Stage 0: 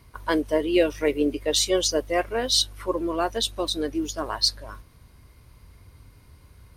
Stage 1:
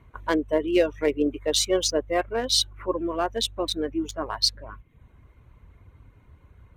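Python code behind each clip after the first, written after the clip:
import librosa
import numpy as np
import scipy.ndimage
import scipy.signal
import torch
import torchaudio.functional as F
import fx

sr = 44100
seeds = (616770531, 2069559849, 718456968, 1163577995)

y = fx.wiener(x, sr, points=9)
y = fx.dereverb_blind(y, sr, rt60_s=0.5)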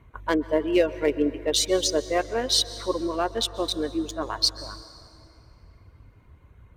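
y = fx.rev_plate(x, sr, seeds[0], rt60_s=3.0, hf_ratio=0.65, predelay_ms=115, drr_db=14.5)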